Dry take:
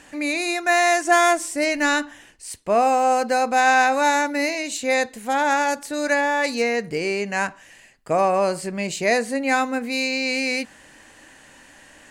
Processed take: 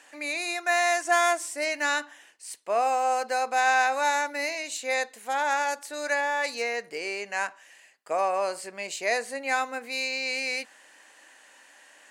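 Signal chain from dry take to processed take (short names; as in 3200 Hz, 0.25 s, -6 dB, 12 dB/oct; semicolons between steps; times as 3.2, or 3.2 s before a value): HPF 540 Hz 12 dB/oct; gain -5 dB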